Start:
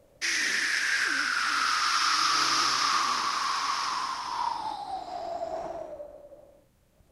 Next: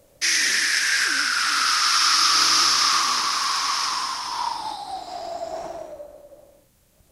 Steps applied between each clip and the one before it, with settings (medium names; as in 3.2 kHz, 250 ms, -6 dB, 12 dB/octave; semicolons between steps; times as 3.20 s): treble shelf 3.5 kHz +10.5 dB; trim +2.5 dB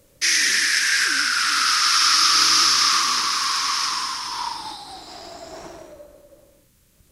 peaking EQ 710 Hz -12.5 dB 0.6 oct; trim +2 dB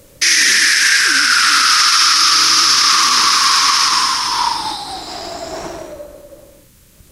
loudness maximiser +12.5 dB; trim -1 dB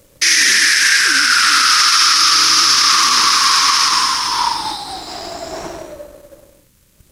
companding laws mixed up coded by A